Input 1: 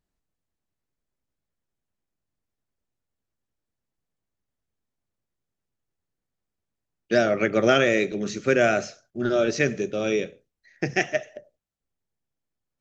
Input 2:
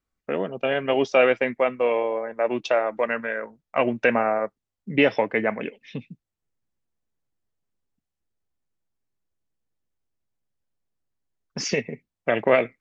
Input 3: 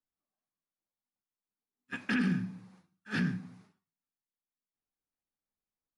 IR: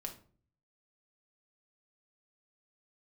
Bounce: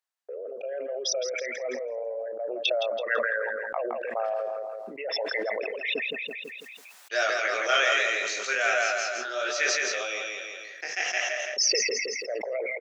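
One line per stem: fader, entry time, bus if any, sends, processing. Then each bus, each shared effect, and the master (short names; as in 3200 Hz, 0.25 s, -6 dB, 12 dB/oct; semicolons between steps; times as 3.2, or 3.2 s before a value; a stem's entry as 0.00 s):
+2.5 dB, 0.00 s, no send, echo send -3 dB, chorus 0.83 Hz, delay 19.5 ms, depth 5.3 ms; auto duck -12 dB, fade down 0.80 s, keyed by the second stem
-4.5 dB, 0.00 s, no send, echo send -10.5 dB, formant sharpening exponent 3; expander -47 dBFS; fast leveller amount 70%
-19.0 dB, 2.15 s, no send, no echo send, dry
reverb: off
echo: feedback echo 0.166 s, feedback 33%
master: Bessel high-pass 1000 Hz, order 4; sustainer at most 21 dB/s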